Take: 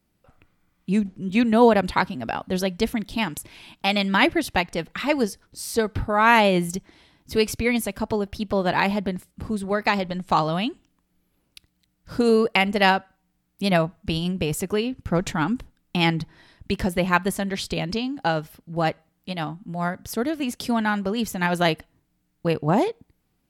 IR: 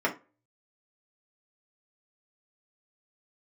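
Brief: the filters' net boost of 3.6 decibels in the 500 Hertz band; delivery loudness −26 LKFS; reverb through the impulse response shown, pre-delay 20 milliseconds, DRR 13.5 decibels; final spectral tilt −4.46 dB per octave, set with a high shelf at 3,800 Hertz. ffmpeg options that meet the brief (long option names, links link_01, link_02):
-filter_complex "[0:a]equalizer=frequency=500:width_type=o:gain=4.5,highshelf=frequency=3800:gain=-4.5,asplit=2[link_01][link_02];[1:a]atrim=start_sample=2205,adelay=20[link_03];[link_02][link_03]afir=irnorm=-1:irlink=0,volume=-25dB[link_04];[link_01][link_04]amix=inputs=2:normalize=0,volume=-4dB"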